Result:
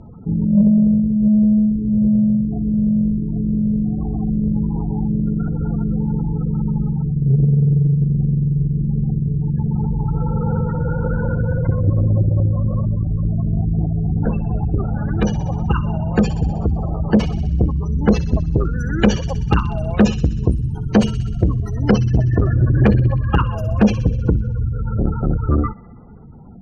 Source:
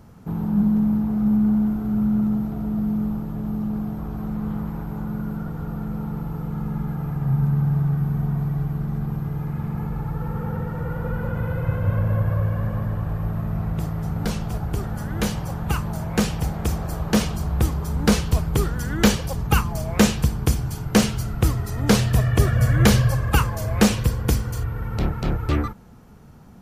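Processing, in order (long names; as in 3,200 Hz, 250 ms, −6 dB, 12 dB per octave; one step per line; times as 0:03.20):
in parallel at −2.5 dB: speech leveller 2 s
on the sum: gate on every frequency bin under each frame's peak −20 dB strong
wave folding −3 dBFS
low-pass filter 6,700 Hz 12 dB per octave
on a send: delay with a high-pass on its return 63 ms, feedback 69%, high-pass 2,600 Hz, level −10.5 dB
on the sum: saturating transformer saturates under 190 Hz
level +1.5 dB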